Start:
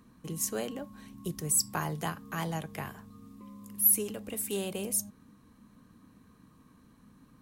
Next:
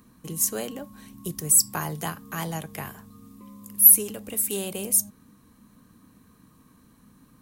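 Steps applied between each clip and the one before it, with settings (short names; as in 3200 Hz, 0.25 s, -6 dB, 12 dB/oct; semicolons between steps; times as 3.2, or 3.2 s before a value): high shelf 7500 Hz +10.5 dB; gain +2.5 dB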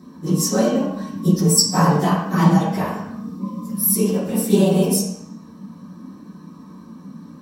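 phase scrambler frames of 50 ms; reverb RT60 0.70 s, pre-delay 3 ms, DRR -8.5 dB; gain -1.5 dB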